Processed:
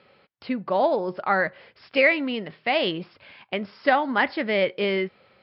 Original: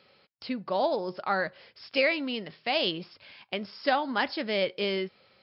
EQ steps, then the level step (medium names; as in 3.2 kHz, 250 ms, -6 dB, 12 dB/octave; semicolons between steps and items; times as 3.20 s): low-pass 2.6 kHz 12 dB/octave; dynamic bell 2 kHz, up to +6 dB, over -47 dBFS, Q 4.6; +5.5 dB